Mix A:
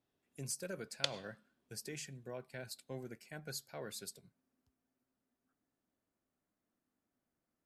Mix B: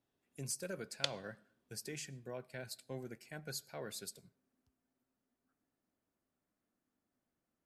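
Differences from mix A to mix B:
speech: send on; background: send -9.0 dB

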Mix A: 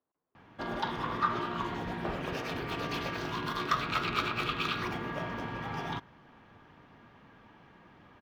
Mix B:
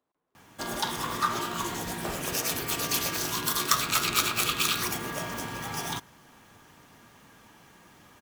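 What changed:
speech +4.5 dB; master: remove distance through air 340 m

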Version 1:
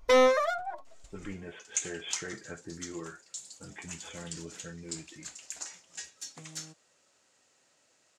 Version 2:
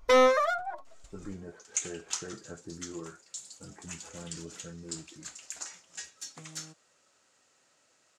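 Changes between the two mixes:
speech: add Gaussian low-pass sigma 6.4 samples; master: add peaking EQ 1.3 kHz +4 dB 0.46 oct

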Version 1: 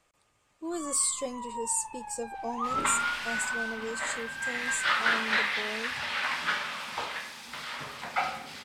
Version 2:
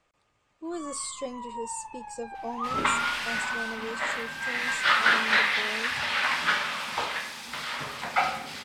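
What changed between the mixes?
speech: add distance through air 78 m; second sound +4.5 dB

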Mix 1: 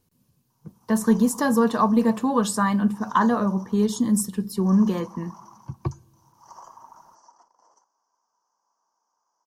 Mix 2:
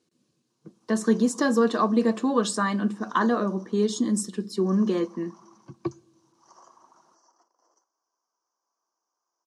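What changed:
background -4.5 dB; master: add cabinet simulation 250–8300 Hz, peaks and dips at 340 Hz +8 dB, 900 Hz -9 dB, 4 kHz +3 dB

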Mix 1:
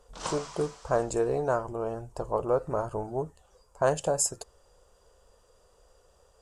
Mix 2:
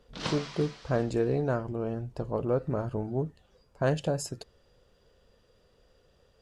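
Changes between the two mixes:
speech -4.0 dB; master: add graphic EQ 125/250/1000/2000/4000/8000 Hz +9/+10/-6/+7/+8/-12 dB

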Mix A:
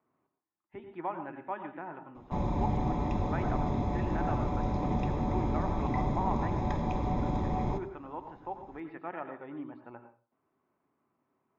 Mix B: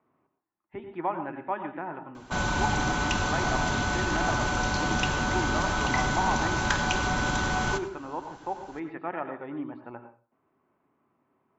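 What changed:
speech +6.0 dB; background: remove boxcar filter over 30 samples

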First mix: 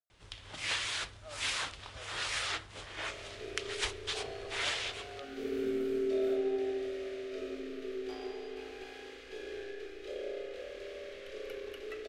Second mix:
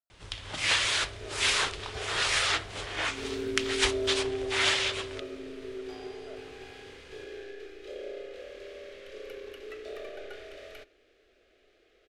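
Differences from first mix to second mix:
first sound +8.5 dB; second sound: entry -2.20 s

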